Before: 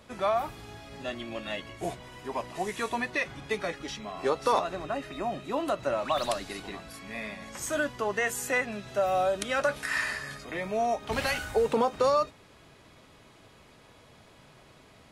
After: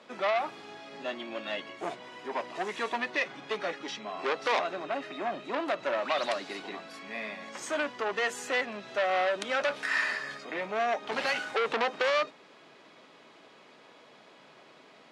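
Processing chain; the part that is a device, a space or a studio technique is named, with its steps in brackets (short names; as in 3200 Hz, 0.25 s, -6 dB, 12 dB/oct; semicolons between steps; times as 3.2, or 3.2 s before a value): HPF 130 Hz 24 dB/oct; public-address speaker with an overloaded transformer (core saturation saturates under 2800 Hz; BPF 270–5100 Hz); gain +2 dB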